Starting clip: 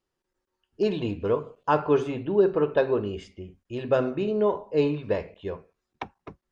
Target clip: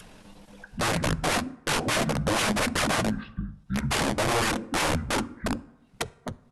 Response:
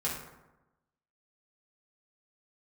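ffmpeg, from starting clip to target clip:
-filter_complex "[0:a]adynamicequalizer=threshold=0.02:dfrequency=440:dqfactor=1.3:tfrequency=440:tqfactor=1.3:attack=5:release=100:ratio=0.375:range=3:mode=boostabove:tftype=bell,acompressor=mode=upward:threshold=0.0631:ratio=2.5,aeval=exprs='(mod(10.6*val(0)+1,2)-1)/10.6':c=same,asetrate=24046,aresample=44100,atempo=1.83401,flanger=delay=0.6:depth=9.3:regen=-28:speed=1.8:shape=sinusoidal,asplit=2[s0][s1];[s1]aresample=22050,aresample=44100[s2];[1:a]atrim=start_sample=2205[s3];[s2][s3]afir=irnorm=-1:irlink=0,volume=0.0708[s4];[s0][s4]amix=inputs=2:normalize=0,volume=1.68"

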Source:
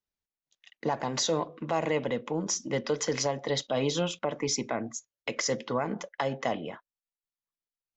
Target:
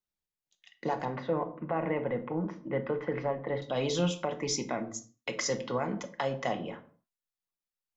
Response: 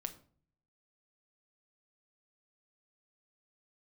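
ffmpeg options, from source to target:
-filter_complex "[0:a]asettb=1/sr,asplit=3[s0][s1][s2];[s0]atrim=end=1.054[s3];[s1]atrim=start=1.05:end=3.62,asetpts=PTS-STARTPTS,afade=t=in:d=0.004:c=qsin,afade=t=out:st=2.566:d=0.004:c=qsin,lowpass=f=2100:w=0.5412,lowpass=f=2100:w=1.3066[s4];[s2]atrim=start=3.616[s5];[s3][s4]acrossfade=d=0.004:c1=hsin:c2=qsin[s6];[s6][s5]acrossfade=d=0.004:c1=qsin:c2=hsin[s7];[1:a]atrim=start_sample=2205,afade=t=out:st=0.35:d=0.01,atrim=end_sample=15876[s8];[s7][s8]afir=irnorm=-1:irlink=0"

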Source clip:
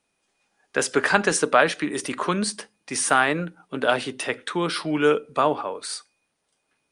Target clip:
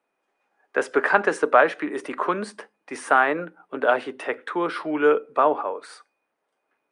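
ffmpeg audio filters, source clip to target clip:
-filter_complex "[0:a]acrossover=split=280 2100:gain=0.1 1 0.112[s0][s1][s2];[s0][s1][s2]amix=inputs=3:normalize=0,volume=1.33"

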